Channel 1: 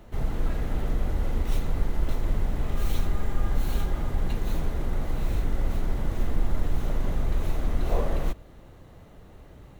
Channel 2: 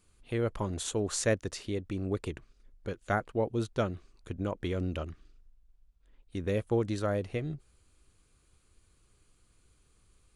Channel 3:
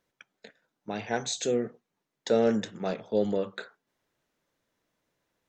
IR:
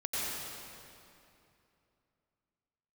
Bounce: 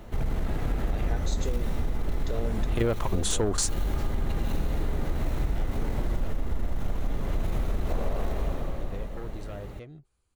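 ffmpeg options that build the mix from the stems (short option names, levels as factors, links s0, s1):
-filter_complex "[0:a]asoftclip=type=tanh:threshold=0.112,volume=1.12,asplit=2[s0][s1];[s1]volume=0.631[s2];[1:a]equalizer=f=860:w=1.6:g=6,aeval=exprs='0.266*sin(PI/2*3.16*val(0)/0.266)':c=same,adelay=2450,volume=1.19[s3];[2:a]volume=1.12,asplit=2[s4][s5];[s5]apad=whole_len=564919[s6];[s3][s6]sidechaingate=range=0.0501:threshold=0.01:ratio=16:detection=peak[s7];[s0][s4]amix=inputs=2:normalize=0,acompressor=threshold=0.0501:ratio=6,volume=1[s8];[3:a]atrim=start_sample=2205[s9];[s2][s9]afir=irnorm=-1:irlink=0[s10];[s7][s8][s10]amix=inputs=3:normalize=0,acompressor=threshold=0.0794:ratio=6"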